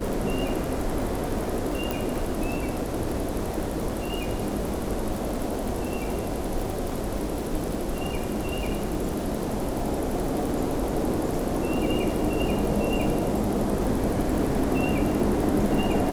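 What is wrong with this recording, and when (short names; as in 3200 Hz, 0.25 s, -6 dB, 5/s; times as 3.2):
crackle 140/s -31 dBFS
1.91 pop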